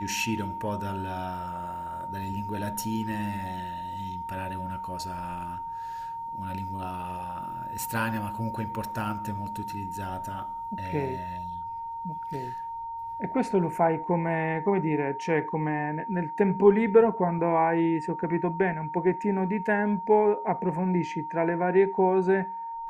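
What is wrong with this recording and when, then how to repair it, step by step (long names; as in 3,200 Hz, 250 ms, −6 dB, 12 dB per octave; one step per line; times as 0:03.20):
whistle 920 Hz −33 dBFS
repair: notch filter 920 Hz, Q 30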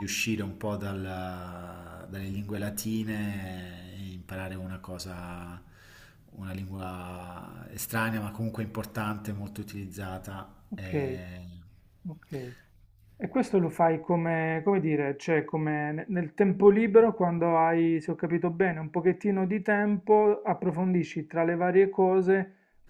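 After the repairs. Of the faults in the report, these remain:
none of them is left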